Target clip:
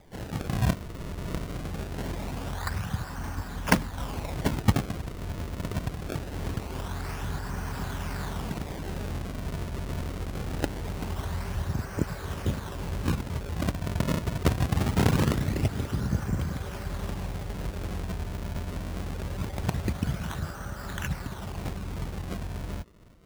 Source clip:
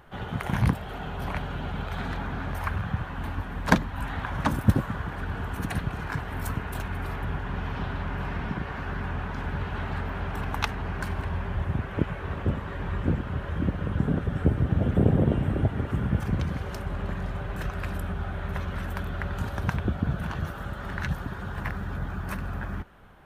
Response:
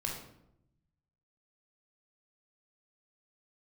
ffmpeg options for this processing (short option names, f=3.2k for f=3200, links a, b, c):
-af "acrusher=samples=31:mix=1:aa=0.000001:lfo=1:lforange=49.6:lforate=0.23,volume=-2dB"